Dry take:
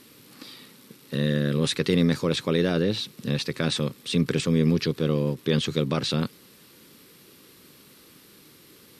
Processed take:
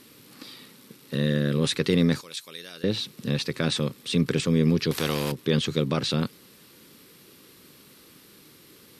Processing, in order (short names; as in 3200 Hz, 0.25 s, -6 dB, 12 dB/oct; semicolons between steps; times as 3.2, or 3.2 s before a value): 2.21–2.84 pre-emphasis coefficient 0.97; 4.91–5.32 spectral compressor 2:1